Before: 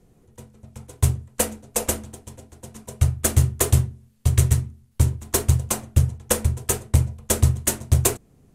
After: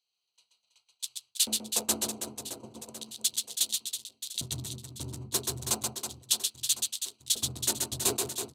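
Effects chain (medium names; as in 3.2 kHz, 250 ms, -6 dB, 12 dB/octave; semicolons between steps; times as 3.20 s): local Wiener filter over 25 samples; ten-band graphic EQ 250 Hz -11 dB, 500 Hz -7 dB, 2 kHz -5 dB, 4 kHz +11 dB; reverse; compression 6:1, threshold -28 dBFS, peak gain reduction 15 dB; reverse; LFO high-pass square 0.34 Hz 260–3500 Hz; reverse bouncing-ball echo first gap 130 ms, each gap 1.5×, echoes 5; trim +2.5 dB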